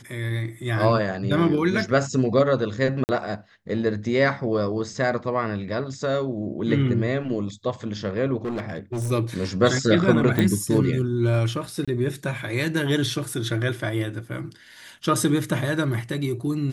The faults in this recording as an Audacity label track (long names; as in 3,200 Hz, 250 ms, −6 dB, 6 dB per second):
3.040000	3.090000	drop-out 49 ms
8.440000	9.120000	clipping −24 dBFS
10.390000	10.390000	click
11.850000	11.880000	drop-out 26 ms